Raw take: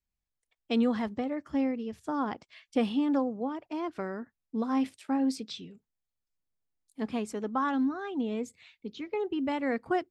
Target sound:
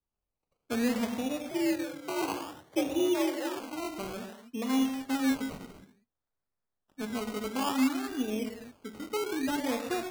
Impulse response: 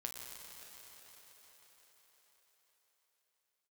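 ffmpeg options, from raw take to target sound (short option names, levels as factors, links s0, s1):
-filter_complex "[1:a]atrim=start_sample=2205,afade=t=out:st=0.44:d=0.01,atrim=end_sample=19845,asetrate=61740,aresample=44100[s0];[0:a][s0]afir=irnorm=-1:irlink=0,acrusher=samples=20:mix=1:aa=0.000001:lfo=1:lforange=12:lforate=0.58,asettb=1/sr,asplit=3[s1][s2][s3];[s1]atrim=end=1.514[s4];[s2]atrim=start=1.51:end=3.6,asetpts=PTS-STARTPTS,afade=t=in:d=0.004:c=qsin,afade=t=out:st=2.086:d=0.004:c=qsin,afreqshift=66[s5];[s3]atrim=start=3.596[s6];[s4][s5]acrossfade=d=0.004:c1=hsin:c2=qsin[s7];[s7][s6]acrossfade=d=0.004:c1=qsin:c2=hsin,volume=1.58"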